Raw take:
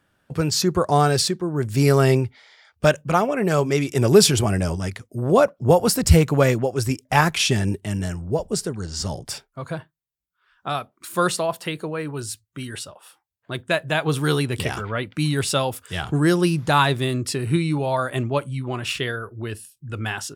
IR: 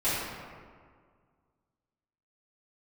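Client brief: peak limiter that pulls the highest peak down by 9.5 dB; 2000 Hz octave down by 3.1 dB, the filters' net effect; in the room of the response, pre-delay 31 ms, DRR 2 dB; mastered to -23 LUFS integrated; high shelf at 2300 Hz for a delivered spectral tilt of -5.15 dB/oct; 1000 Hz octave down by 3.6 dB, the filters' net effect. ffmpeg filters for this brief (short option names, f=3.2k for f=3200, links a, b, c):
-filter_complex "[0:a]equalizer=f=1k:t=o:g=-4.5,equalizer=f=2k:t=o:g=-4.5,highshelf=f=2.3k:g=3.5,alimiter=limit=-11dB:level=0:latency=1,asplit=2[a][b];[1:a]atrim=start_sample=2205,adelay=31[c];[b][c]afir=irnorm=-1:irlink=0,volume=-13.5dB[d];[a][d]amix=inputs=2:normalize=0,volume=-1.5dB"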